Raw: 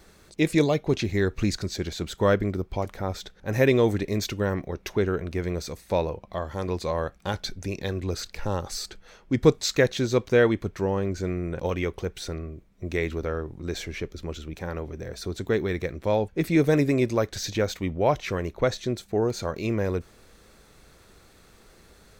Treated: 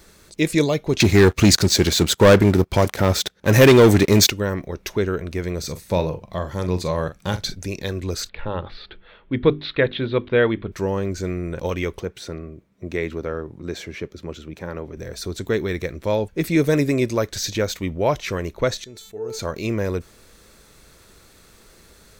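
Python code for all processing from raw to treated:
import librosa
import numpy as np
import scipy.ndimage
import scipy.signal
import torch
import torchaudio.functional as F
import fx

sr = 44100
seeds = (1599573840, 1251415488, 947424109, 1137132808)

y = fx.chain(x, sr, fx.highpass(hz=75.0, slope=12),
    fx.leveller(passes=3), at=(1.0, 4.3))
y = fx.chain(y, sr, fx.peak_eq(hz=140.0, db=7.0, octaves=1.3),
    fx.doubler(ms=44.0, db=-11), at=(5.59, 7.55))
y = fx.chain(y, sr, fx.ellip_lowpass(hz=3600.0, order=4, stop_db=50),
    fx.hum_notches(base_hz=50, count=8), at=(8.29, 10.72))
y = fx.chain(y, sr, fx.highpass(hz=100.0, slope=12),
    fx.high_shelf(hz=3400.0, db=-10.0), at=(12.0, 14.97))
y = fx.chain(y, sr, fx.comb_fb(f0_hz=440.0, decay_s=0.31, harmonics='all', damping=0.0, mix_pct=90),
    fx.sustainer(db_per_s=54.0), at=(18.84, 19.39))
y = fx.high_shelf(y, sr, hz=4100.0, db=6.0)
y = fx.notch(y, sr, hz=760.0, q=12.0)
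y = F.gain(torch.from_numpy(y), 2.5).numpy()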